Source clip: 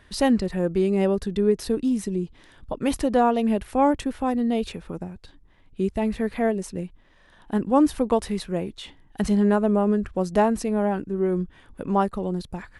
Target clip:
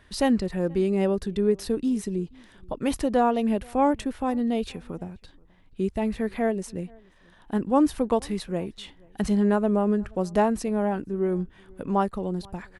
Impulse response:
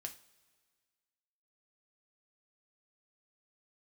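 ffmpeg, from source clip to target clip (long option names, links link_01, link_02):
-filter_complex "[0:a]asplit=2[link_01][link_02];[link_02]adelay=478.1,volume=-27dB,highshelf=frequency=4000:gain=-10.8[link_03];[link_01][link_03]amix=inputs=2:normalize=0,volume=-2dB"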